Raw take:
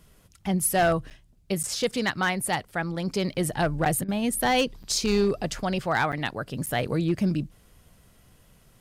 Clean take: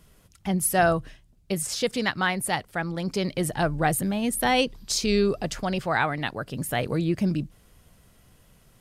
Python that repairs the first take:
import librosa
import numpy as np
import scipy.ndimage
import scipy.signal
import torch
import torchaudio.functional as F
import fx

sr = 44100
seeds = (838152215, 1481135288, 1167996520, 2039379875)

y = fx.fix_declip(x, sr, threshold_db=-16.0)
y = fx.fix_interpolate(y, sr, at_s=(1.1, 1.63, 3.34, 3.85, 4.83, 6.12, 6.66), length_ms=8.2)
y = fx.fix_interpolate(y, sr, at_s=(4.04,), length_ms=43.0)